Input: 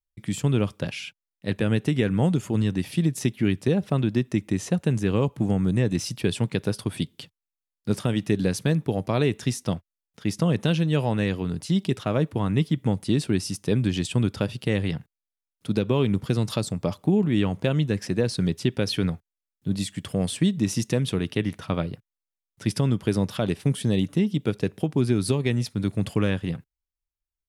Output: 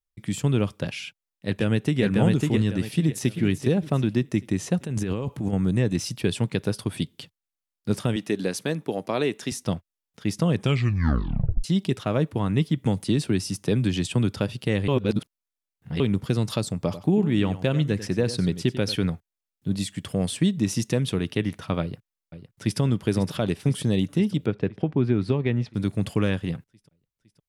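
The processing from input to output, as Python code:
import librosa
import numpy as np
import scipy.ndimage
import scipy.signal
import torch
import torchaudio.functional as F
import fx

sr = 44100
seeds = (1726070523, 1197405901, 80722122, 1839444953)

y = fx.echo_throw(x, sr, start_s=1.05, length_s=0.97, ms=550, feedback_pct=30, wet_db=-1.5)
y = fx.echo_throw(y, sr, start_s=2.84, length_s=0.52, ms=390, feedback_pct=40, wet_db=-10.0)
y = fx.over_compress(y, sr, threshold_db=-27.0, ratio=-1.0, at=(4.8, 5.53))
y = fx.highpass(y, sr, hz=250.0, slope=12, at=(8.16, 9.52))
y = fx.band_squash(y, sr, depth_pct=40, at=(12.85, 14.36))
y = fx.echo_single(y, sr, ms=94, db=-13.5, at=(16.74, 18.96))
y = fx.echo_throw(y, sr, start_s=21.81, length_s=0.99, ms=510, feedback_pct=70, wet_db=-11.0)
y = fx.lowpass(y, sr, hz=2500.0, slope=12, at=(24.46, 25.74))
y = fx.edit(y, sr, fx.tape_stop(start_s=10.54, length_s=1.1),
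    fx.reverse_span(start_s=14.88, length_s=1.12), tone=tone)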